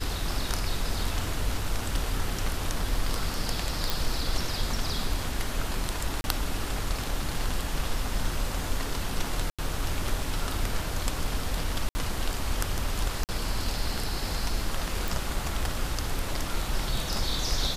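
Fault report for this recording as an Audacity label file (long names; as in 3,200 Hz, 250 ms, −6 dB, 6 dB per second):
3.900000	3.900000	click
6.210000	6.240000	drop-out 31 ms
9.500000	9.590000	drop-out 86 ms
11.890000	11.950000	drop-out 60 ms
13.240000	13.290000	drop-out 48 ms
15.080000	15.080000	click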